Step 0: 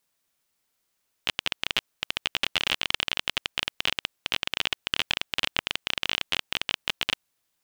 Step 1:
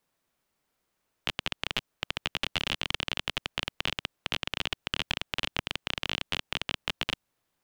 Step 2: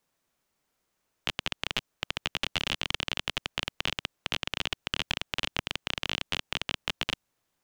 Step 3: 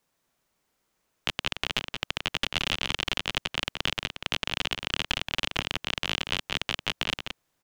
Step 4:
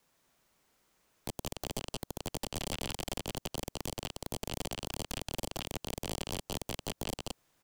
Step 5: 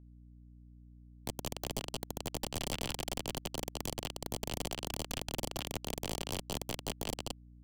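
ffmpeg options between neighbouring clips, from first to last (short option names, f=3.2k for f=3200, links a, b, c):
-filter_complex "[0:a]highshelf=f=2.2k:g=-11.5,acrossover=split=240|3000[a][b][c];[b]acompressor=threshold=-36dB:ratio=6[d];[a][d][c]amix=inputs=3:normalize=0,volume=5dB"
-af "equalizer=f=6.5k:t=o:w=0.6:g=3"
-filter_complex "[0:a]asplit=2[a][b];[b]adelay=174.9,volume=-6dB,highshelf=f=4k:g=-3.94[c];[a][c]amix=inputs=2:normalize=0,volume=2dB"
-filter_complex "[0:a]acrossover=split=660|1400|3700[a][b][c][d];[a]acompressor=threshold=-38dB:ratio=4[e];[b]acompressor=threshold=-46dB:ratio=4[f];[c]acompressor=threshold=-39dB:ratio=4[g];[d]acompressor=threshold=-41dB:ratio=4[h];[e][f][g][h]amix=inputs=4:normalize=0,aeval=exprs='0.0299*(abs(mod(val(0)/0.0299+3,4)-2)-1)':c=same,volume=3.5dB"
-af "acrusher=bits=8:mix=0:aa=0.000001,aeval=exprs='val(0)+0.002*(sin(2*PI*60*n/s)+sin(2*PI*2*60*n/s)/2+sin(2*PI*3*60*n/s)/3+sin(2*PI*4*60*n/s)/4+sin(2*PI*5*60*n/s)/5)':c=same"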